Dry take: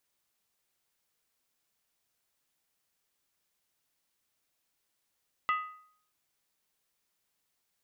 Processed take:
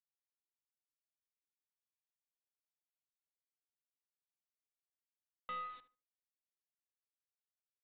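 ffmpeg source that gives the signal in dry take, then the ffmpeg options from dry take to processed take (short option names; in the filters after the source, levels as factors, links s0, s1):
-f lavfi -i "aevalsrc='0.0631*pow(10,-3*t/0.6)*sin(2*PI*1250*t)+0.0299*pow(10,-3*t/0.475)*sin(2*PI*1992.5*t)+0.0141*pow(10,-3*t/0.411)*sin(2*PI*2670*t)+0.00668*pow(10,-3*t/0.396)*sin(2*PI*2870*t)+0.00316*pow(10,-3*t/0.368)*sin(2*PI*3316.2*t)':d=0.63:s=44100"
-filter_complex "[0:a]aeval=exprs='(tanh(100*val(0)+0.1)-tanh(0.1))/100':c=same,aresample=8000,aeval=exprs='val(0)*gte(abs(val(0)),0.00188)':c=same,aresample=44100,asplit=2[s0][s1];[s1]adelay=75,lowpass=f=1900:p=1,volume=0.224,asplit=2[s2][s3];[s3]adelay=75,lowpass=f=1900:p=1,volume=0.24,asplit=2[s4][s5];[s5]adelay=75,lowpass=f=1900:p=1,volume=0.24[s6];[s0][s2][s4][s6]amix=inputs=4:normalize=0"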